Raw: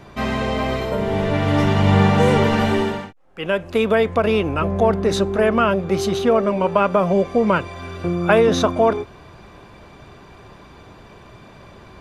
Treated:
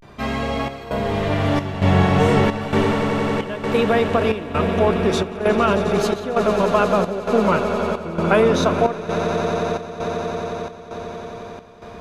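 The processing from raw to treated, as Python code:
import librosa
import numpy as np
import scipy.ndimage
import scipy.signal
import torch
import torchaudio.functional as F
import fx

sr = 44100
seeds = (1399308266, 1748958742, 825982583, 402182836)

y = fx.vibrato(x, sr, rate_hz=0.35, depth_cents=87.0)
y = fx.echo_swell(y, sr, ms=90, loudest=8, wet_db=-13.5)
y = fx.chopper(y, sr, hz=1.1, depth_pct=65, duty_pct=75)
y = F.gain(torch.from_numpy(y), -1.5).numpy()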